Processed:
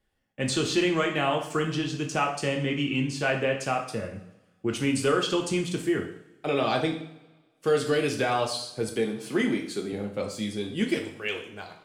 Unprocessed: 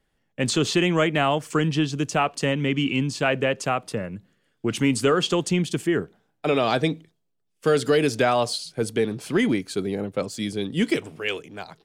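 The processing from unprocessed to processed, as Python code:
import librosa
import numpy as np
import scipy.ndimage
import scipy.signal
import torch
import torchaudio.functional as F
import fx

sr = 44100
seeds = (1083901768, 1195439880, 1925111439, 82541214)

y = fx.highpass(x, sr, hz=140.0, slope=24, at=(8.89, 9.93))
y = fx.rev_double_slope(y, sr, seeds[0], early_s=0.56, late_s=1.6, knee_db=-19, drr_db=1.0)
y = F.gain(torch.from_numpy(y), -6.0).numpy()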